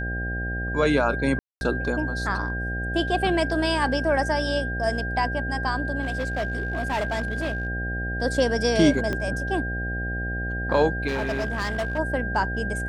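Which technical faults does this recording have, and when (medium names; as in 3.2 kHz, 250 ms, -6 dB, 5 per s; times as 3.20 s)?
buzz 60 Hz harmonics 13 -30 dBFS
whine 1.6 kHz -30 dBFS
1.39–1.61 s: dropout 221 ms
6.01–7.67 s: clipped -22 dBFS
9.13 s: pop -15 dBFS
11.07–11.99 s: clipped -22.5 dBFS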